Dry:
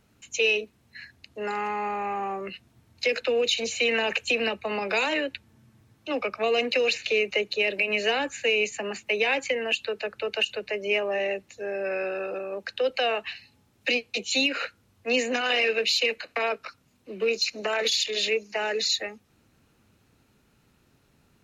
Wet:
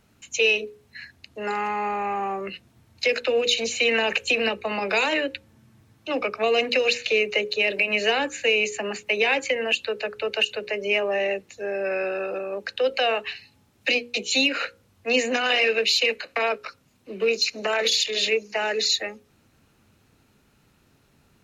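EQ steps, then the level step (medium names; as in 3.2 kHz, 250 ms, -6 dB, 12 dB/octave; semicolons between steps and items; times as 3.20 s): hum notches 60/120/180/240/300/360/420/480/540 Hz; +3.0 dB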